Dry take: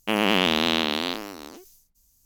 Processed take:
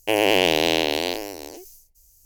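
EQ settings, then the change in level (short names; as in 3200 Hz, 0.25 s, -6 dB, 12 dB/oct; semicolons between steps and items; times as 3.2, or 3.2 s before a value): bell 3600 Hz -9 dB 0.4 oct; fixed phaser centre 520 Hz, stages 4; +7.5 dB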